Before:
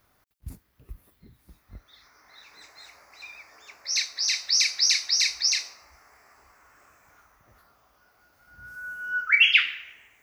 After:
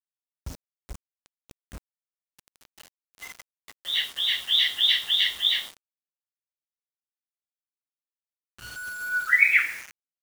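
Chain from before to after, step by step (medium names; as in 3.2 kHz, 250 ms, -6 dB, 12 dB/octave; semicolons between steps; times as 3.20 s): knee-point frequency compression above 1.5 kHz 1.5:1; bit crusher 7-bit; trim +1.5 dB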